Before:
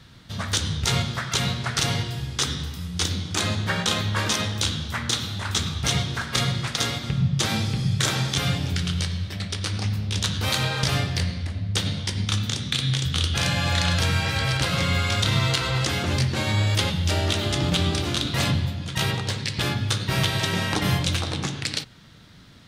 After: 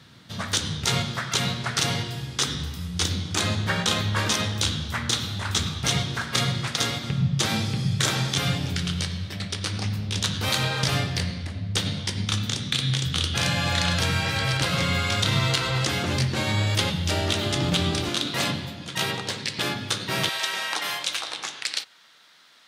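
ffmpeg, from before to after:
-af "asetnsamples=n=441:p=0,asendcmd='2.54 highpass f 41;5.67 highpass f 97;18.09 highpass f 210;20.29 highpass f 800',highpass=120"

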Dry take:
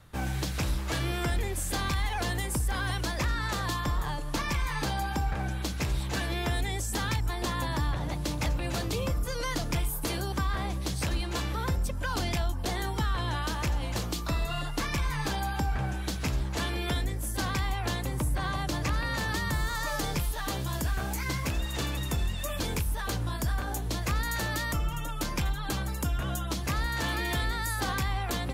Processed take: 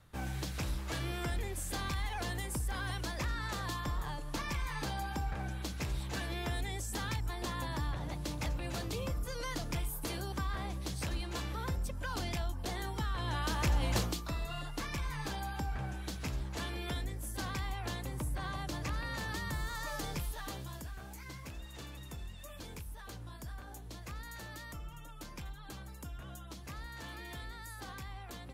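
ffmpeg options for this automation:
-af "volume=1dB,afade=t=in:st=13.14:d=0.81:silence=0.398107,afade=t=out:st=13.95:d=0.27:silence=0.354813,afade=t=out:st=20.31:d=0.59:silence=0.421697"

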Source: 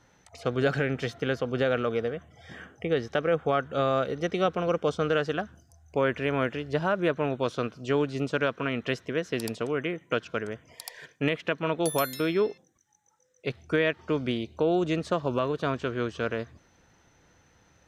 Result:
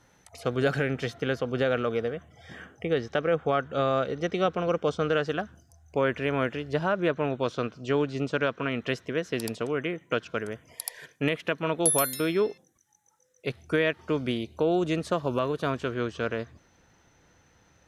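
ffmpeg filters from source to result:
-af "asetnsamples=n=441:p=0,asendcmd='0.91 equalizer g 3.5;2.98 equalizer g -7;5.27 equalizer g 2;6.85 equalizer g -9.5;8.71 equalizer g 2.5;10.38 equalizer g 13;15.94 equalizer g 1.5',equalizer=f=11k:t=o:w=0.5:g=12"

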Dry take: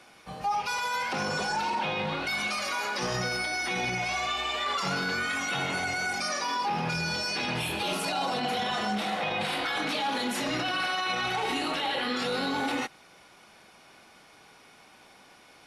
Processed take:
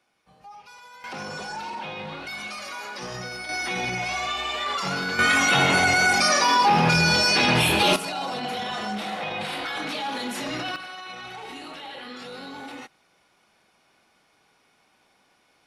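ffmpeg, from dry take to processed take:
-af "asetnsamples=n=441:p=0,asendcmd='1.04 volume volume -4.5dB;3.49 volume volume 2dB;5.19 volume volume 11dB;7.96 volume volume -0.5dB;10.76 volume volume -9dB',volume=-16.5dB"

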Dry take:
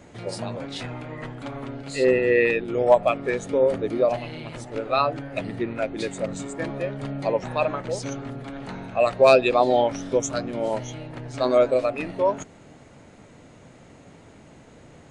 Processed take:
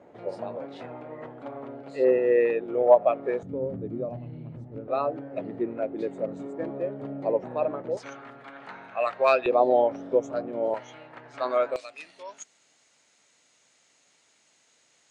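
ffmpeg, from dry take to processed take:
-af "asetnsamples=n=441:p=0,asendcmd='3.43 bandpass f 140;4.88 bandpass f 420;7.97 bandpass f 1400;9.46 bandpass f 520;10.74 bandpass f 1300;11.76 bandpass f 6000',bandpass=f=580:t=q:w=1.1:csg=0"

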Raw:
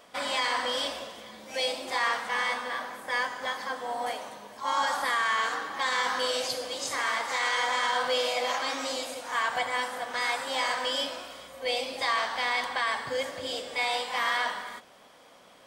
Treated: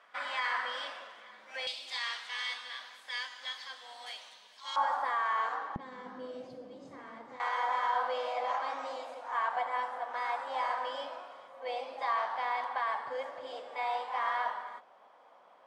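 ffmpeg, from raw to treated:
-af "asetnsamples=n=441:p=0,asendcmd='1.67 bandpass f 3700;4.76 bandpass f 870;5.76 bandpass f 200;7.4 bandpass f 880',bandpass=f=1.5k:t=q:w=1.7:csg=0"

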